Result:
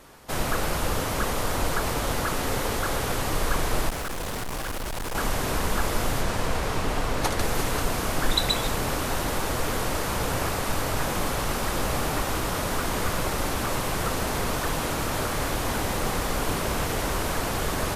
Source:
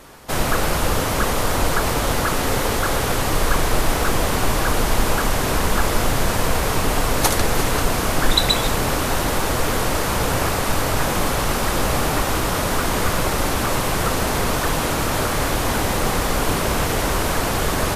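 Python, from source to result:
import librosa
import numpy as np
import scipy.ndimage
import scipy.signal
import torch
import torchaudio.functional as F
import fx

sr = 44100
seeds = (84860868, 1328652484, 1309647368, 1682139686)

y = fx.overload_stage(x, sr, gain_db=22.0, at=(3.89, 5.15))
y = fx.high_shelf(y, sr, hz=fx.line((6.2, 12000.0), (7.38, 6400.0)), db=-10.5, at=(6.2, 7.38), fade=0.02)
y = y * 10.0 ** (-6.5 / 20.0)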